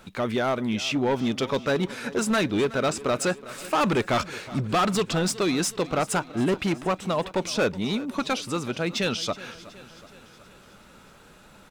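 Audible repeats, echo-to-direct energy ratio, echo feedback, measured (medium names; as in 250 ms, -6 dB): 4, -16.5 dB, 57%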